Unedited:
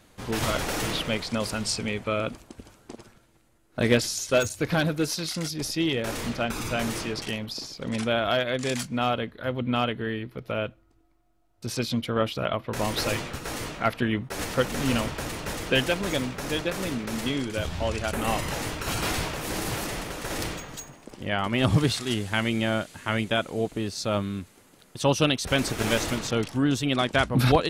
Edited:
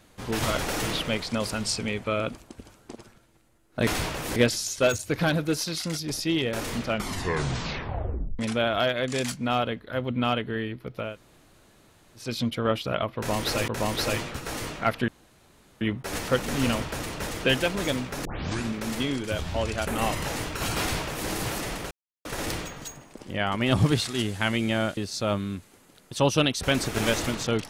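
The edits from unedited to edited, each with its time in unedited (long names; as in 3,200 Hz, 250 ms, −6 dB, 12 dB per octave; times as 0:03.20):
0:06.37: tape stop 1.53 s
0:10.59–0:11.77: fill with room tone, crossfade 0.24 s
0:12.67–0:13.19: repeat, 2 plays
0:14.07: splice in room tone 0.73 s
0:16.51: tape start 0.49 s
0:19.06–0:19.55: duplicate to 0:03.87
0:20.17: splice in silence 0.34 s
0:22.89–0:23.81: remove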